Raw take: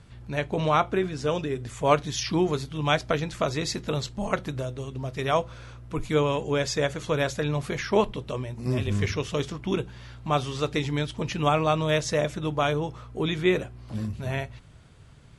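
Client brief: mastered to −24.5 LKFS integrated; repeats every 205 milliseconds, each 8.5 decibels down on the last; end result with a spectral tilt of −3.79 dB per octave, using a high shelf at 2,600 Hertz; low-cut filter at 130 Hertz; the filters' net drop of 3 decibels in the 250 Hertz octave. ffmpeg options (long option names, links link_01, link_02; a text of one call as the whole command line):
ffmpeg -i in.wav -af "highpass=130,equalizer=frequency=250:width_type=o:gain=-4,highshelf=frequency=2600:gain=6.5,aecho=1:1:205|410|615|820:0.376|0.143|0.0543|0.0206,volume=2dB" out.wav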